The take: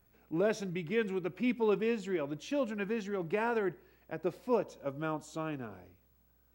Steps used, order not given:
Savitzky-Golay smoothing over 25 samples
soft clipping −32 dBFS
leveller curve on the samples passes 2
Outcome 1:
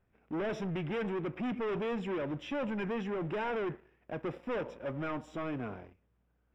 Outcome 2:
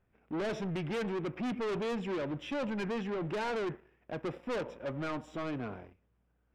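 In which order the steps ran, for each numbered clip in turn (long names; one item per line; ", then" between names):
leveller curve on the samples, then soft clipping, then Savitzky-Golay smoothing
leveller curve on the samples, then Savitzky-Golay smoothing, then soft clipping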